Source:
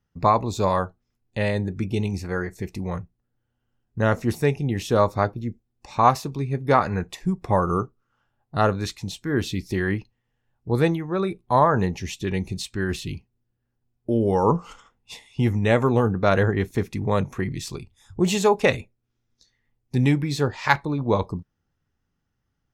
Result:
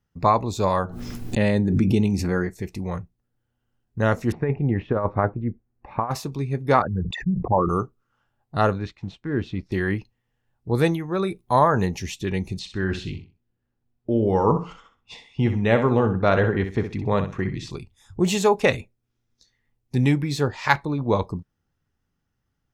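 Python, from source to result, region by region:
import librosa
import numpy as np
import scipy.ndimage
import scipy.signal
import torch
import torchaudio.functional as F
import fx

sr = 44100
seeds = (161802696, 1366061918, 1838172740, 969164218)

y = fx.chain(x, sr, fx.peak_eq(hz=230.0, db=7.5, octaves=1.3),
    fx.pre_swell(db_per_s=34.0), at=(0.84, 2.51))
y = fx.chain(y, sr, fx.lowpass(hz=2000.0, slope=24),
    fx.over_compress(threshold_db=-20.0, ratio=-0.5), at=(4.32, 6.11))
y = fx.chain(y, sr, fx.envelope_sharpen(power=3.0),
    fx.highpass(hz=41.0, slope=24),
    fx.sustainer(db_per_s=52.0), at=(6.82, 7.69))
y = fx.chain(y, sr, fx.law_mismatch(coded='A'),
    fx.lowpass(hz=2300.0, slope=12),
    fx.dynamic_eq(hz=960.0, q=0.83, threshold_db=-42.0, ratio=4.0, max_db=-6), at=(8.78, 9.72))
y = fx.chain(y, sr, fx.high_shelf(hz=5800.0, db=9.0),
    fx.notch(hz=7700.0, q=19.0), at=(10.79, 12.06))
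y = fx.chain(y, sr, fx.lowpass(hz=4300.0, slope=12),
    fx.echo_feedback(ms=63, feedback_pct=25, wet_db=-9.5), at=(12.59, 17.71))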